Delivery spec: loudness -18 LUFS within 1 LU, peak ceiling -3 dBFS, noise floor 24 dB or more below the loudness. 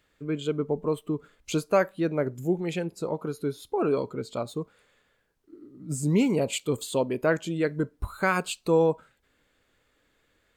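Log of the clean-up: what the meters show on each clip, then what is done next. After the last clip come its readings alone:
loudness -28.0 LUFS; peak -11.0 dBFS; loudness target -18.0 LUFS
-> gain +10 dB; limiter -3 dBFS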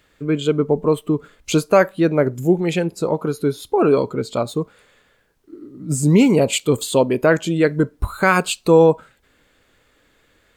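loudness -18.0 LUFS; peak -3.0 dBFS; noise floor -60 dBFS

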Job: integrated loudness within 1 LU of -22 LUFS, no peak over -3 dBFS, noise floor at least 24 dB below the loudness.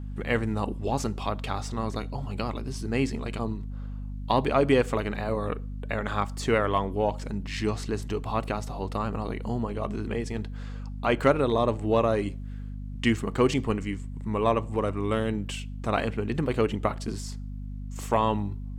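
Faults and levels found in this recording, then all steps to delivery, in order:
hum 50 Hz; harmonics up to 250 Hz; hum level -33 dBFS; loudness -28.5 LUFS; peak -8.5 dBFS; loudness target -22.0 LUFS
-> de-hum 50 Hz, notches 5; gain +6.5 dB; limiter -3 dBFS

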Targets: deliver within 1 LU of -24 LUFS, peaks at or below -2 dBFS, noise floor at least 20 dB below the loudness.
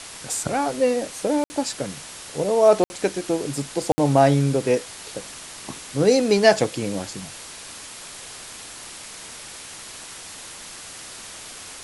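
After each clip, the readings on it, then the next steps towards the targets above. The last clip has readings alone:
dropouts 3; longest dropout 60 ms; noise floor -39 dBFS; noise floor target -42 dBFS; loudness -21.5 LUFS; peak -3.0 dBFS; loudness target -24.0 LUFS
-> interpolate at 1.44/2.84/3.92, 60 ms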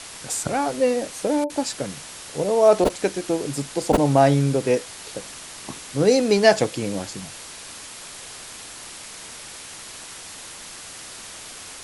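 dropouts 0; noise floor -39 dBFS; noise floor target -42 dBFS
-> denoiser 6 dB, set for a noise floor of -39 dBFS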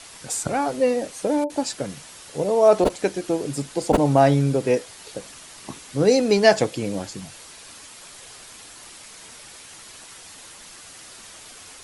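noise floor -44 dBFS; loudness -21.5 LUFS; peak -3.0 dBFS; loudness target -24.0 LUFS
-> gain -2.5 dB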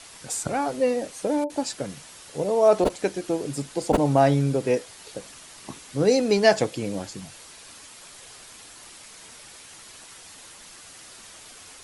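loudness -24.0 LUFS; peak -5.5 dBFS; noise floor -46 dBFS

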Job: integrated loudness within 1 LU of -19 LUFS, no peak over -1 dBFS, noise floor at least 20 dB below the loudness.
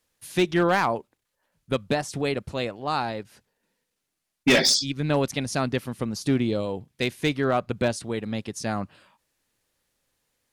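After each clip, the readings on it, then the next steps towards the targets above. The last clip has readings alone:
clipped 0.2%; flat tops at -13.5 dBFS; loudness -25.5 LUFS; peak -13.5 dBFS; loudness target -19.0 LUFS
-> clip repair -13.5 dBFS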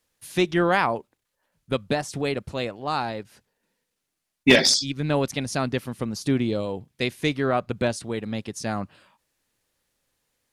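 clipped 0.0%; loudness -24.5 LUFS; peak -4.5 dBFS; loudness target -19.0 LUFS
-> gain +5.5 dB; limiter -1 dBFS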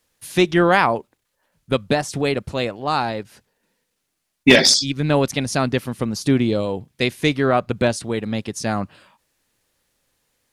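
loudness -19.5 LUFS; peak -1.0 dBFS; noise floor -75 dBFS

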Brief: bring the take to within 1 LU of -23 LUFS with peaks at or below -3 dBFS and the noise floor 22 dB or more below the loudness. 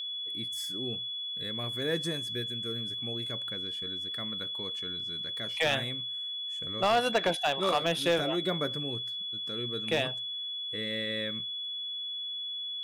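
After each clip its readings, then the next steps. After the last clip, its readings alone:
clipped 0.4%; flat tops at -19.5 dBFS; steady tone 3400 Hz; tone level -34 dBFS; loudness -31.0 LUFS; peak -19.5 dBFS; loudness target -23.0 LUFS
-> clip repair -19.5 dBFS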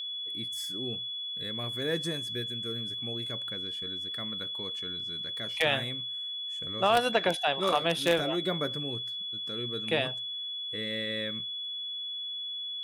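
clipped 0.0%; steady tone 3400 Hz; tone level -34 dBFS
-> notch 3400 Hz, Q 30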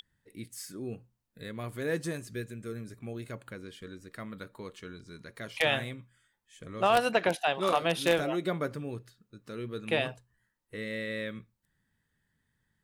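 steady tone none; loudness -32.0 LUFS; peak -10.5 dBFS; loudness target -23.0 LUFS
-> gain +9 dB; limiter -3 dBFS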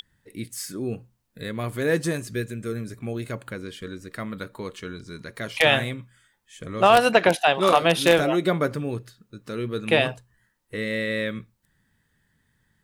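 loudness -23.0 LUFS; peak -3.0 dBFS; noise floor -70 dBFS

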